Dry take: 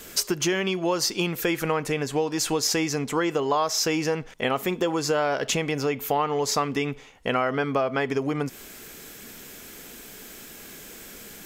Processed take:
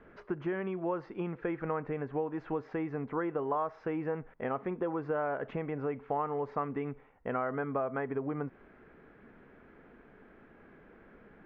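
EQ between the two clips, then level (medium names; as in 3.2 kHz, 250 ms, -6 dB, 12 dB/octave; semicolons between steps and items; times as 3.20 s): low-pass 1.7 kHz 24 dB/octave; -8.5 dB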